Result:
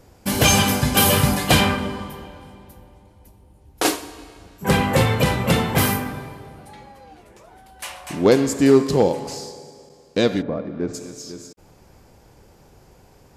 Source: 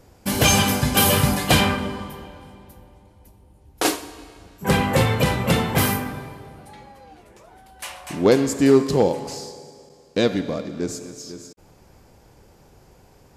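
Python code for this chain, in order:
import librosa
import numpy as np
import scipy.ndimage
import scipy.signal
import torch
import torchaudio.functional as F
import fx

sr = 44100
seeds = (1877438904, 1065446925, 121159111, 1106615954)

y = fx.lowpass(x, sr, hz=fx.line((10.41, 1300.0), (10.93, 2200.0)), slope=12, at=(10.41, 10.93), fade=0.02)
y = y * librosa.db_to_amplitude(1.0)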